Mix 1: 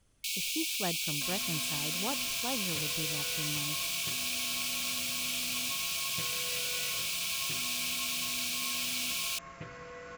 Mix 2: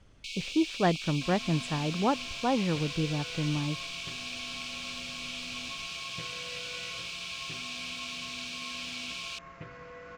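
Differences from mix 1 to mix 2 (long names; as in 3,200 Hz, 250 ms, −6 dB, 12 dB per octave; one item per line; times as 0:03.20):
speech +11.0 dB
master: add high-frequency loss of the air 130 metres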